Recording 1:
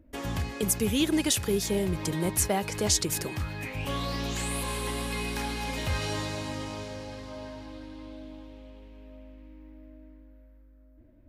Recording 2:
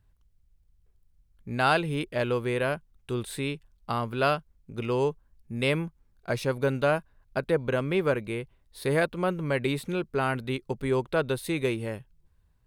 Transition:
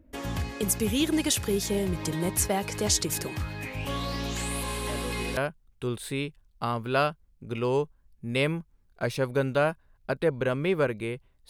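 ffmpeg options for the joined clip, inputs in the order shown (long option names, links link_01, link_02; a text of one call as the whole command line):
ffmpeg -i cue0.wav -i cue1.wav -filter_complex "[1:a]asplit=2[link_01][link_02];[0:a]apad=whole_dur=11.49,atrim=end=11.49,atrim=end=5.372[link_03];[link_02]atrim=start=2.638:end=8.76[link_04];[link_01]atrim=start=2.16:end=2.64,asetpts=PTS-STARTPTS,volume=-12dB,afade=type=in:duration=0.004:curve=hsin,afade=type=out:start_time=0.476:duration=0.004:curve=hsin,adelay=215649S[link_05];[link_03][link_04]acrossfade=duration=0.004:curve1=hsin:curve2=hsin[link_06];[link_06][link_05]amix=inputs=2:normalize=0" out.wav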